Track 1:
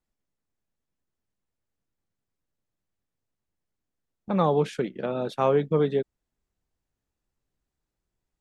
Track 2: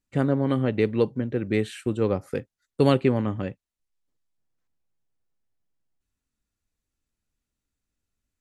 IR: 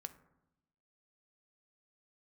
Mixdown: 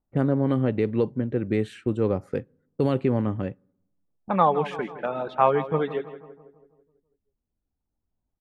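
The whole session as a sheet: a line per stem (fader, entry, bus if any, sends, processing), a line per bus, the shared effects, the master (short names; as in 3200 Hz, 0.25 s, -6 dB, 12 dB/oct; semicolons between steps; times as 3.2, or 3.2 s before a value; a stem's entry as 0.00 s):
-2.5 dB, 0.00 s, send -11.5 dB, echo send -13 dB, reverb removal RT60 1.8 s; band shelf 1500 Hz +10.5 dB 2.6 oct
+0.5 dB, 0.00 s, send -17 dB, no echo send, limiter -13 dBFS, peak gain reduction 6.5 dB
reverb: on, RT60 0.90 s, pre-delay 3 ms
echo: feedback echo 0.164 s, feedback 54%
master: low-pass opened by the level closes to 710 Hz, open at -22.5 dBFS; high shelf 2000 Hz -9 dB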